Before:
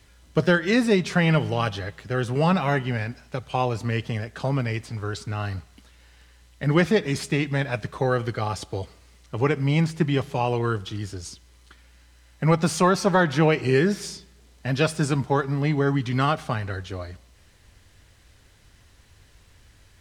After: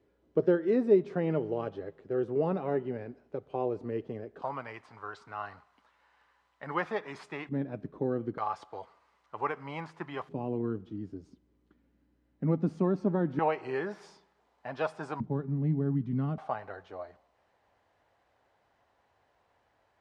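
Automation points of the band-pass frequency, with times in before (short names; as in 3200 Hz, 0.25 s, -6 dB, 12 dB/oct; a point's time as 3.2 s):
band-pass, Q 2.4
390 Hz
from 4.42 s 1000 Hz
from 7.49 s 280 Hz
from 8.38 s 1000 Hz
from 10.29 s 260 Hz
from 13.39 s 860 Hz
from 15.2 s 200 Hz
from 16.38 s 760 Hz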